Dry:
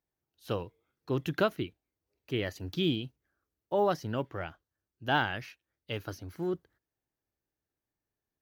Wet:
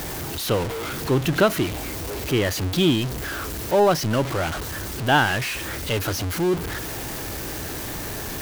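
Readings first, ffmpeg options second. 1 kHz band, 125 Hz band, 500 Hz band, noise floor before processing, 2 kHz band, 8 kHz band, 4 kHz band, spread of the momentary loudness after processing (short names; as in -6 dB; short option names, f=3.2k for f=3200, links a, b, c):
+10.5 dB, +12.5 dB, +10.5 dB, under -85 dBFS, +11.5 dB, +26.5 dB, +12.0 dB, 10 LU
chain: -af "aeval=exprs='val(0)+0.5*0.0282*sgn(val(0))':c=same,volume=8dB"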